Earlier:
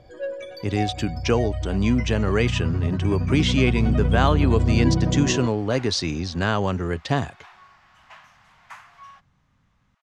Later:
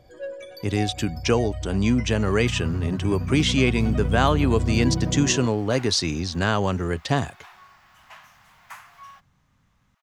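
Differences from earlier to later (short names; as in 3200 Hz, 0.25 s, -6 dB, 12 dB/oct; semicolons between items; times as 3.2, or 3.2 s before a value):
first sound -4.0 dB; master: remove air absorption 60 m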